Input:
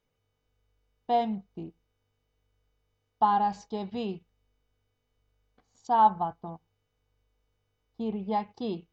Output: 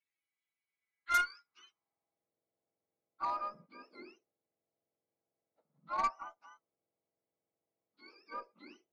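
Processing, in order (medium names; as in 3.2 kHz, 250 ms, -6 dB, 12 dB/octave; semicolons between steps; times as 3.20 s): spectrum inverted on a logarithmic axis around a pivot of 1 kHz; band-pass sweep 2.8 kHz -> 580 Hz, 0.65–2.33 s; Chebyshev shaper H 4 -22 dB, 6 -12 dB, 8 -16 dB, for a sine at -20 dBFS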